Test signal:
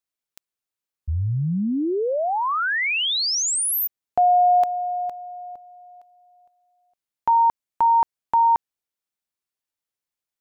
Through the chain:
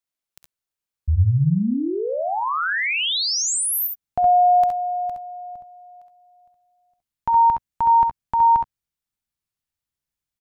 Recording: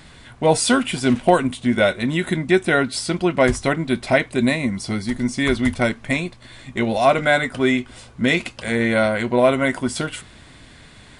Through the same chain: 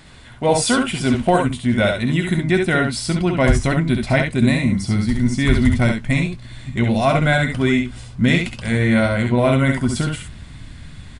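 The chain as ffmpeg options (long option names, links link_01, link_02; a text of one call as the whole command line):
ffmpeg -i in.wav -af "asubboost=boost=4.5:cutoff=190,aecho=1:1:53|67|80:0.141|0.562|0.141,volume=-1dB" out.wav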